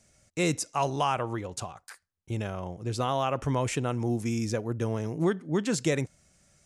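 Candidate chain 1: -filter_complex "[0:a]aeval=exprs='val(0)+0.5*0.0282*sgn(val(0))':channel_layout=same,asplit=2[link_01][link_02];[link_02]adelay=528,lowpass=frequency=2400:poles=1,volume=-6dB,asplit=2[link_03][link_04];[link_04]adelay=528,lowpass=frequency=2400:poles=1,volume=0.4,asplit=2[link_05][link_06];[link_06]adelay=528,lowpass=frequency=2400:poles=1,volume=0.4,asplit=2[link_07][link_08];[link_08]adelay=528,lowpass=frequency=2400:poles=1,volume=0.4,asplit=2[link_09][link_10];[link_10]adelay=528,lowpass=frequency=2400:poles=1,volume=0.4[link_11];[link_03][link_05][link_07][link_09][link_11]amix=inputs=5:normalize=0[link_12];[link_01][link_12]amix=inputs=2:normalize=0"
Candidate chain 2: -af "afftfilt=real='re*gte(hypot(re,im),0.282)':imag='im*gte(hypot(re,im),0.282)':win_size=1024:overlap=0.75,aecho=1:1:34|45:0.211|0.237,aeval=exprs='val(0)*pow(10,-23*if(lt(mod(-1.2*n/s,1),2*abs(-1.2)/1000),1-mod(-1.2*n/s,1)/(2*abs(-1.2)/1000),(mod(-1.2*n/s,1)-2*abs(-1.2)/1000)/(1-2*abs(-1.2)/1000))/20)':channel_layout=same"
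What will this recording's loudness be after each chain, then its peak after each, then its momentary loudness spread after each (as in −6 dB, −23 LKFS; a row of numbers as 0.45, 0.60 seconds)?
−27.0, −40.5 LKFS; −12.0, −21.0 dBFS; 6, 19 LU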